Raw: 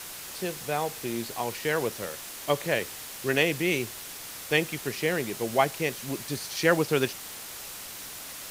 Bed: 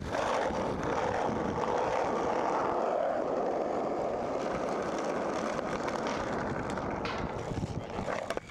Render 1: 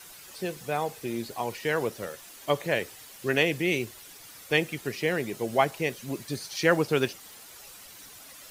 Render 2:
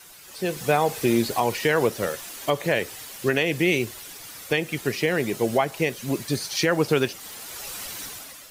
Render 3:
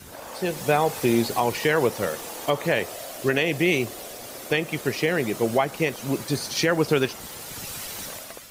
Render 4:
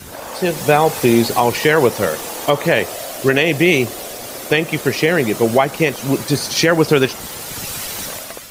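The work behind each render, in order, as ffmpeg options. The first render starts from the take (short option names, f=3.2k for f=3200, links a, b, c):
-af "afftdn=nr=10:nf=-41"
-af "dynaudnorm=f=230:g=5:m=14dB,alimiter=limit=-10dB:level=0:latency=1:release=213"
-filter_complex "[1:a]volume=-9.5dB[a];[0:a][a]amix=inputs=2:normalize=0"
-af "volume=8.5dB,alimiter=limit=-2dB:level=0:latency=1"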